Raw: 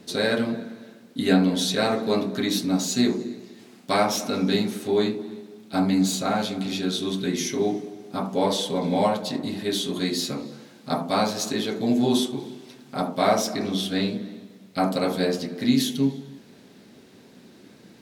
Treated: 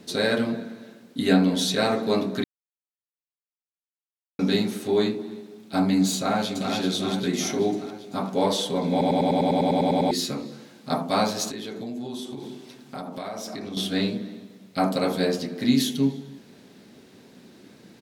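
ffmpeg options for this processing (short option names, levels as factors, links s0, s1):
-filter_complex "[0:a]asplit=2[s0][s1];[s1]afade=t=in:st=6.16:d=0.01,afade=t=out:st=6.73:d=0.01,aecho=0:1:390|780|1170|1560|1950|2340|2730|3120:0.530884|0.318531|0.191118|0.114671|0.0688026|0.0412816|0.0247689|0.0148614[s2];[s0][s2]amix=inputs=2:normalize=0,asettb=1/sr,asplit=3[s3][s4][s5];[s3]atrim=end=11.494[s6];[s4]atrim=start=11.49:end=13.77,asetpts=PTS-STARTPTS,afade=t=in:d=0.004:c=qsin,afade=t=out:st=2.276:d=0.004:c=qsin,acompressor=threshold=0.0282:ratio=6:attack=3.2:release=140:knee=1:detection=peak[s7];[s5]atrim=start=13.766[s8];[s6][s7]acrossfade=d=0.004:c1=hsin:c2=qsin[s9];[s9][s8]acrossfade=d=0.004:c1=qsin:c2=hsin,asplit=15[s10][s11][s12][s13][s14][s15][s16][s17][s18][s19][s20][s21][s22][s23][s24];[s10]atrim=end=2.44,asetpts=PTS-STARTPTS,afade=t=out:st=2.436:d=0.004:c=hsin[s25];[s11]atrim=start=2.44:end=4.39,asetpts=PTS-STARTPTS,volume=0[s26];[s12]atrim=start=4.39:end=9.012,asetpts=PTS-STARTPTS,afade=t=in:d=0.004:c=hsin[s27];[s13]atrim=start=8.908:end=9.012[s28];[s14]atrim=start=8.908:end=9.012[s29];[s15]atrim=start=8.908:end=9.012[s30];[s16]atrim=start=8.908:end=9.012[s31];[s17]atrim=start=8.908:end=9.012[s32];[s18]atrim=start=8.908:end=9.012[s33];[s19]atrim=start=8.908:end=9.012[s34];[s20]atrim=start=8.908:end=9.012[s35];[s21]atrim=start=8.908:end=9.012[s36];[s22]atrim=start=8.908:end=9.012[s37];[s23]atrim=start=8.908:end=9.012[s38];[s24]atrim=start=10.108[s39];[s25][s26][s27]concat=n=3:v=0:a=1[s40];[s40][s28]acrossfade=d=0.004:c1=hsin:c2=hsin[s41];[s41][s29]acrossfade=d=0.004:c1=hsin:c2=hsin[s42];[s42][s30]acrossfade=d=0.004:c1=hsin:c2=hsin[s43];[s43][s31]acrossfade=d=0.004:c1=hsin:c2=hsin[s44];[s44][s32]acrossfade=d=0.004:c1=hsin:c2=hsin[s45];[s45][s33]acrossfade=d=0.004:c1=hsin:c2=hsin[s46];[s46][s34]acrossfade=d=0.004:c1=hsin:c2=hsin[s47];[s47][s35]acrossfade=d=0.004:c1=hsin:c2=hsin[s48];[s48][s36]acrossfade=d=0.004:c1=hsin:c2=hsin[s49];[s49][s37]acrossfade=d=0.004:c1=hsin:c2=hsin[s50];[s50][s38]acrossfade=d=0.004:c1=hsin:c2=hsin[s51];[s51][s39]acrossfade=d=0.004:c1=hsin:c2=hsin"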